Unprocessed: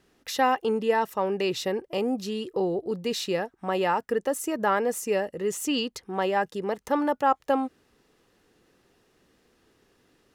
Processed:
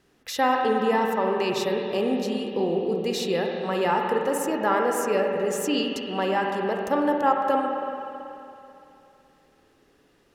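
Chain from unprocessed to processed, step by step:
spring reverb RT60 2.9 s, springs 47/54 ms, chirp 70 ms, DRR 1 dB

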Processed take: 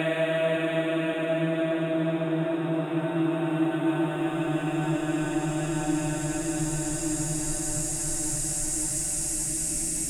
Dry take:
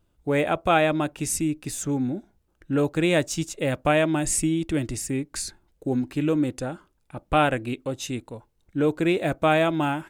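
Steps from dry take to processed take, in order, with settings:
source passing by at 0:04.52, 16 m/s, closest 20 metres
extreme stretch with random phases 28×, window 0.25 s, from 0:03.85
echo whose low-pass opens from repeat to repeat 568 ms, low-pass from 200 Hz, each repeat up 1 octave, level −3 dB
level −4.5 dB

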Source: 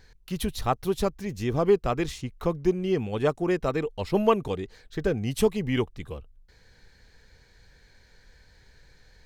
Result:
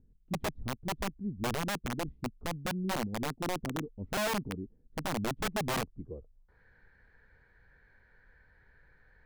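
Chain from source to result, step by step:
low-pass filter sweep 250 Hz → 1,600 Hz, 0:05.98–0:06.61
wrap-around overflow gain 19 dB
level −8 dB

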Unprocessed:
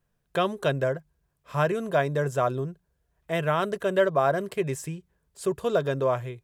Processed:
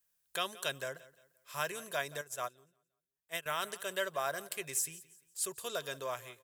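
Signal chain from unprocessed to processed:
first-order pre-emphasis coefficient 0.97
repeating echo 174 ms, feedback 35%, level −19 dB
0:02.21–0:03.46: expander for the loud parts 2.5 to 1, over −51 dBFS
level +6 dB

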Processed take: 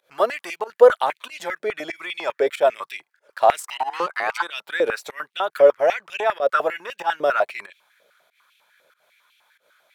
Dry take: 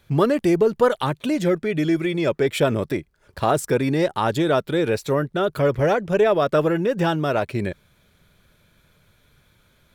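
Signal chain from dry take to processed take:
fake sidechain pumping 94 BPM, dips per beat 1, −20 dB, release 135 ms
0:03.62–0:04.41: ring modulation 390 Hz → 1,200 Hz
high-pass on a step sequencer 10 Hz 540–2,700 Hz
level −2.5 dB

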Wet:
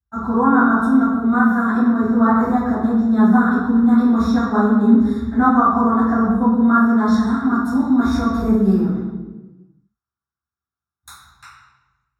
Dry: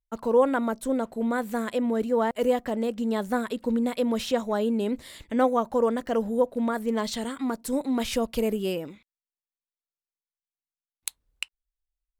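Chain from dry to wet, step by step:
phaser with its sweep stopped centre 1,300 Hz, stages 4
convolution reverb RT60 1.2 s, pre-delay 3 ms, DRR −17.5 dB
level −12 dB

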